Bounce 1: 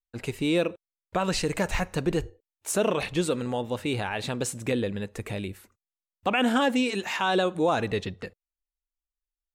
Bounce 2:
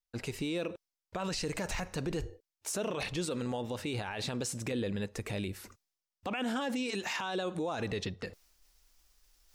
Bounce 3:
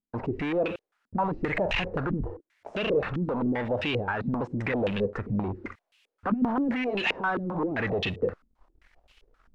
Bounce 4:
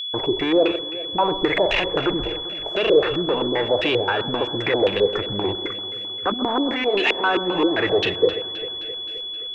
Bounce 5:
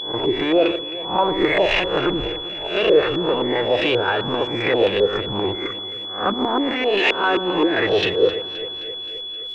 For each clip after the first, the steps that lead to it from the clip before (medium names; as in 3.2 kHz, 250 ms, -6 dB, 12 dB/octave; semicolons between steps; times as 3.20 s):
peaking EQ 5.3 kHz +7 dB 0.63 oct; peak limiter -25 dBFS, peak gain reduction 11.5 dB; reverse; upward compressor, threshold -42 dBFS; reverse; trim -1.5 dB
waveshaping leveller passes 3; added noise violet -51 dBFS; step-sequenced low-pass 7.6 Hz 230–2800 Hz
resonant low shelf 280 Hz -6 dB, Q 3; whistle 3.4 kHz -33 dBFS; echo whose repeats swap between lows and highs 131 ms, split 1.3 kHz, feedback 79%, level -12.5 dB; trim +6.5 dB
reverse spectral sustain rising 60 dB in 0.41 s